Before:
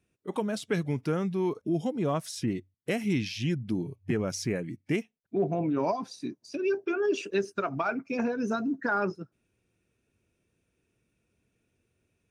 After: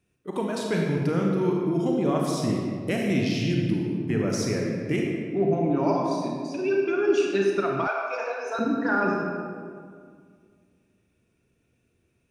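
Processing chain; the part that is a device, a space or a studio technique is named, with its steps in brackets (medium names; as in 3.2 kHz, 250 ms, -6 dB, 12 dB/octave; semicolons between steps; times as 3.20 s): stairwell (reverberation RT60 2.0 s, pre-delay 30 ms, DRR -1 dB); 7.87–8.59 s: steep high-pass 470 Hz 36 dB/octave; trim +1 dB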